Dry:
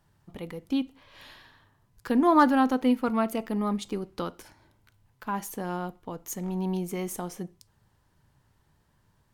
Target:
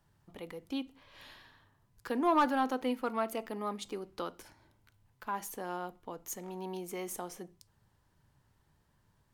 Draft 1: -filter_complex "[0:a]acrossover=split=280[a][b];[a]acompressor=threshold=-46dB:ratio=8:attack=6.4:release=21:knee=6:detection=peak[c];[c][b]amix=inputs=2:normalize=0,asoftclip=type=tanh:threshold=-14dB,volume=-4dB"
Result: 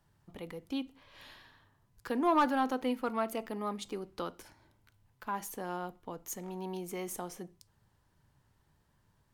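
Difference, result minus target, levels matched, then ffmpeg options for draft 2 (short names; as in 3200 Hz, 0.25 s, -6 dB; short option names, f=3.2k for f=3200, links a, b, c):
compressor: peak gain reduction -6 dB
-filter_complex "[0:a]acrossover=split=280[a][b];[a]acompressor=threshold=-53dB:ratio=8:attack=6.4:release=21:knee=6:detection=peak[c];[c][b]amix=inputs=2:normalize=0,asoftclip=type=tanh:threshold=-14dB,volume=-4dB"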